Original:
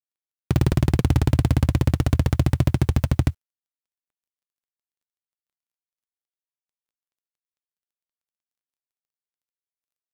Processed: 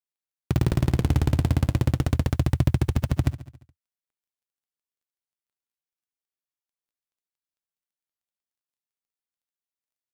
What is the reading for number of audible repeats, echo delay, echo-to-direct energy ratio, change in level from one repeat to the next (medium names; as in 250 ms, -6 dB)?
5, 70 ms, -13.5 dB, -4.5 dB